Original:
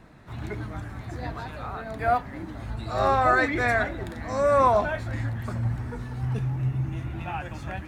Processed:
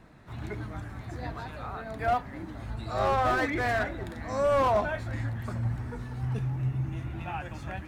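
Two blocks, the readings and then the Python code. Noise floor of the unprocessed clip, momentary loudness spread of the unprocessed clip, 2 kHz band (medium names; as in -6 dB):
-40 dBFS, 16 LU, -5.5 dB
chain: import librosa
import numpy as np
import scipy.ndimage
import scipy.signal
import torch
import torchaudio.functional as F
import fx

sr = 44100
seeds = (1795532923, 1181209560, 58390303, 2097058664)

y = fx.slew_limit(x, sr, full_power_hz=100.0)
y = y * librosa.db_to_amplitude(-3.0)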